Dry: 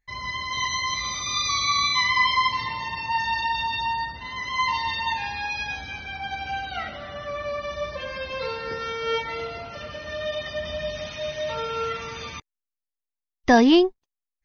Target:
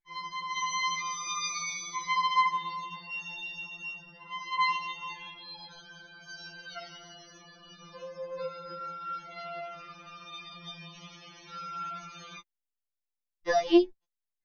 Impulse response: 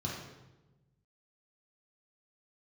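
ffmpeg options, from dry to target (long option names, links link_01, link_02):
-filter_complex "[0:a]asettb=1/sr,asplit=3[link_01][link_02][link_03];[link_01]atrim=end=6.214[link_04];[link_02]atrim=start=6.21:end=7.41,asetpts=PTS-STARTPTS,afade=type=in:duration=0.004:curve=qsin,afade=type=out:start_time=1.196:duration=0.004:curve=qsin,highshelf=frequency=3900:width_type=q:width=1.5:gain=11[link_05];[link_03]atrim=start=7.406[link_06];[link_04][link_05]acrossfade=duration=0.004:curve1=hsin:curve2=qsin[link_07];[link_07][link_06]acrossfade=duration=0.004:curve1=qsin:curve2=hsin,afftfilt=real='re*2.83*eq(mod(b,8),0)':imag='im*2.83*eq(mod(b,8),0)':win_size=2048:overlap=0.75,volume=-7.5dB"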